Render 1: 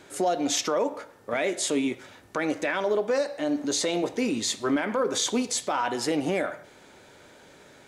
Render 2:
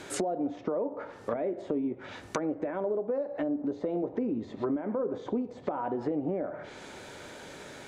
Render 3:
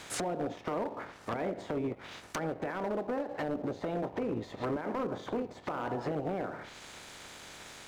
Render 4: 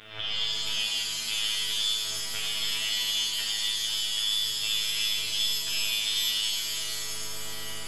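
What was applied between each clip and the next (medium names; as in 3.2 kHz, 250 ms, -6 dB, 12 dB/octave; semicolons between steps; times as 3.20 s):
low-pass that closes with the level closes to 630 Hz, closed at -25 dBFS; compression 4:1, threshold -36 dBFS, peak gain reduction 13 dB; trim +6.5 dB
spectral peaks clipped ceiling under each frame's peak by 16 dB; waveshaping leveller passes 1; hard clipper -22.5 dBFS, distortion -15 dB; trim -5.5 dB
frequency inversion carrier 3.7 kHz; robot voice 108 Hz; pitch-shifted reverb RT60 3.6 s, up +7 st, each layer -2 dB, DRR -6.5 dB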